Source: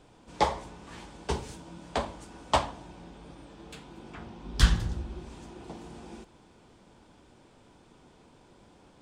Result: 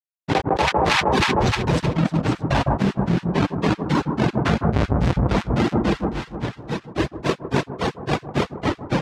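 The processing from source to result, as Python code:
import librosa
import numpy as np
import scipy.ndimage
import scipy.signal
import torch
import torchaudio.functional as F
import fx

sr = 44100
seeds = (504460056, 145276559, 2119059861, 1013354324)

y = fx.halfwave_hold(x, sr)
y = scipy.signal.sosfilt(scipy.signal.butter(2, 4400.0, 'lowpass', fs=sr, output='sos'), y)
y = fx.dereverb_blind(y, sr, rt60_s=1.4)
y = scipy.signal.sosfilt(scipy.signal.butter(2, 80.0, 'highpass', fs=sr, output='sos'), y)
y = fx.peak_eq(y, sr, hz=130.0, db=6.0, octaves=0.36)
y = fx.hum_notches(y, sr, base_hz=50, count=3)
y = fx.granulator(y, sr, seeds[0], grain_ms=142.0, per_s=3.6, spray_ms=322.0, spread_st=3)
y = fx.echo_alternate(y, sr, ms=155, hz=1200.0, feedback_pct=59, wet_db=-12.5)
y = fx.env_flatten(y, sr, amount_pct=100)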